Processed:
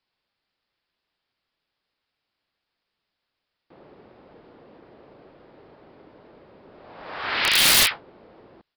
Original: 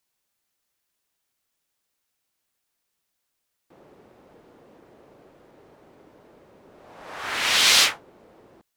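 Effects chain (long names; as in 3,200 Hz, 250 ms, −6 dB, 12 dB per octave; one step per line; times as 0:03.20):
0:07.49–0:07.91: flat-topped band-pass 3,600 Hz, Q 0.54
downsampling to 11,025 Hz
wrap-around overflow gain 12.5 dB
level +2.5 dB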